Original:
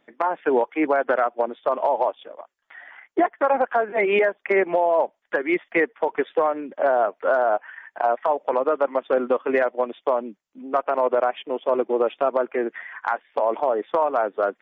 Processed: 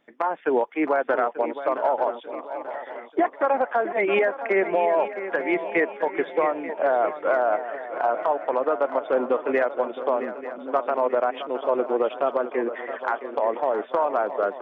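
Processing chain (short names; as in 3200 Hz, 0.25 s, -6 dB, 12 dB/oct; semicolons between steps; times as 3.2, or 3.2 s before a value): swung echo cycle 0.888 s, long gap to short 3:1, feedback 46%, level -11.5 dB; gain -2 dB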